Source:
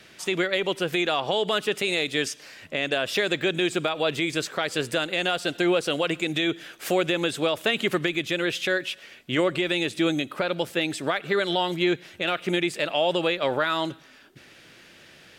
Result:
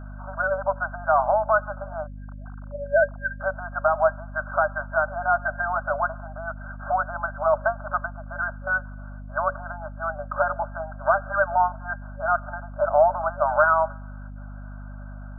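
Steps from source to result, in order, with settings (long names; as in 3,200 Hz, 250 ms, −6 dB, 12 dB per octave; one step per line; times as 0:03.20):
0:02.07–0:03.40: three sine waves on the formant tracks
brick-wall band-pass 570–1,600 Hz
mains hum 50 Hz, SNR 12 dB
level +8 dB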